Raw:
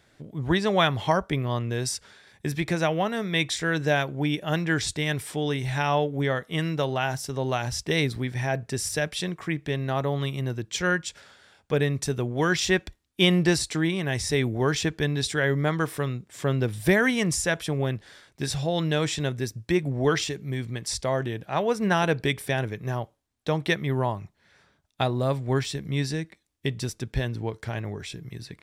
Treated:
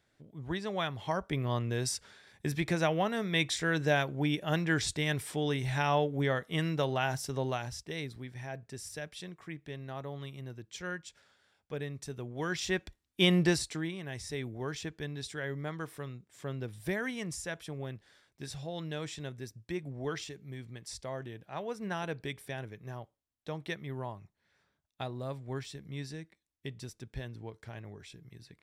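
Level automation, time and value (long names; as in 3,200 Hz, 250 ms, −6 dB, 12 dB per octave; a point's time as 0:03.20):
0:00.99 −12.5 dB
0:01.47 −4.5 dB
0:07.39 −4.5 dB
0:07.89 −14.5 dB
0:12.03 −14.5 dB
0:13.41 −4 dB
0:13.98 −13.5 dB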